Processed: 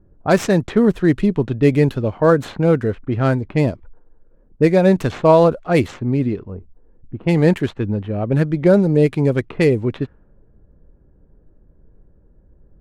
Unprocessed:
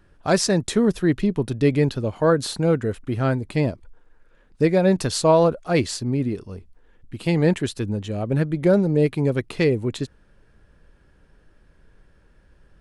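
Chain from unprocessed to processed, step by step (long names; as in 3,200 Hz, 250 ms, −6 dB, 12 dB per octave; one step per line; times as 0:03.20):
running median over 9 samples
low-pass that shuts in the quiet parts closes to 490 Hz, open at −16 dBFS
level +4.5 dB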